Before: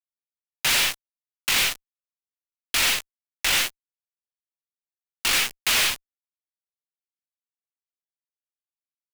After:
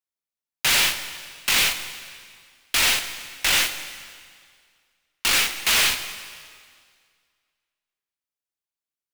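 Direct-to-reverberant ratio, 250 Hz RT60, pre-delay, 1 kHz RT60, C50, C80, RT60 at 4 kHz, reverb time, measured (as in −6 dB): 8.5 dB, 1.9 s, 5 ms, 2.0 s, 10.0 dB, 11.0 dB, 1.9 s, 2.0 s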